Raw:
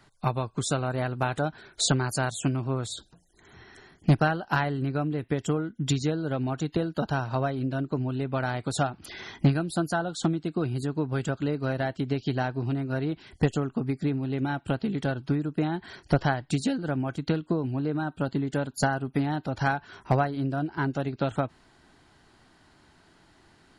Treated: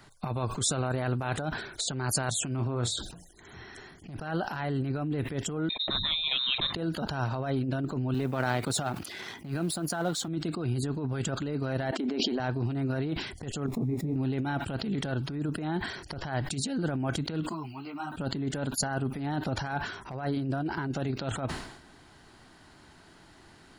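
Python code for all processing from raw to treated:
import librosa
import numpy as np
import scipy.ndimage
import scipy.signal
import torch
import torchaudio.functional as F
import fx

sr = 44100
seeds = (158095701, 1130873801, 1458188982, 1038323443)

y = fx.chain(x, sr, fx.high_shelf(hz=10000.0, db=-10.5),
    fx.doubler(ms=33.0, db=-12.0), at=(2.55, 2.95))
y = fx.chain(y, sr, fx.tilt_eq(slope=3.0),
    fx.freq_invert(carrier_hz=3900), at=(5.69, 6.74))
y = fx.chain(y, sr, fx.law_mismatch(coded='A'),
    fx.highpass(hz=110.0, slope=12), at=(8.14, 10.28))
y = fx.chain(y, sr, fx.brickwall_highpass(low_hz=210.0),
    fx.high_shelf(hz=2400.0, db=-10.5),
    fx.sustainer(db_per_s=26.0), at=(11.91, 12.4))
y = fx.chain(y, sr, fx.crossing_spikes(level_db=-30.5),
    fx.moving_average(points=29),
    fx.detune_double(cents=31), at=(13.66, 14.16))
y = fx.chain(y, sr, fx.riaa(side='recording'),
    fx.fixed_phaser(hz=2500.0, stages=8),
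    fx.ensemble(), at=(17.49, 18.12))
y = fx.over_compress(y, sr, threshold_db=-31.0, ratio=-1.0)
y = fx.high_shelf(y, sr, hz=9800.0, db=4.5)
y = fx.sustainer(y, sr, db_per_s=68.0)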